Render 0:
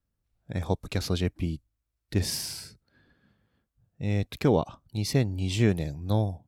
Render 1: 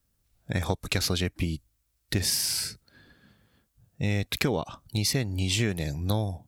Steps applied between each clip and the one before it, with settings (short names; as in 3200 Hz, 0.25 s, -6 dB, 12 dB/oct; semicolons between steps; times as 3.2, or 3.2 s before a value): high shelf 3500 Hz +10 dB; compressor 6:1, threshold -30 dBFS, peak gain reduction 12.5 dB; dynamic EQ 1800 Hz, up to +5 dB, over -55 dBFS, Q 0.98; gain +6 dB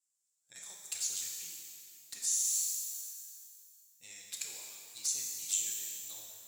band-pass 7400 Hz, Q 5.4; envelope flanger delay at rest 11.2 ms, full sweep at -36.5 dBFS; shimmer reverb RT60 2.3 s, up +12 st, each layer -8 dB, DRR -0.5 dB; gain +6.5 dB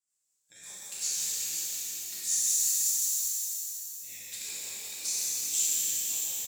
echo 0.509 s -5.5 dB; rotary speaker horn 5.5 Hz; shimmer reverb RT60 3 s, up +12 st, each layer -8 dB, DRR -7.5 dB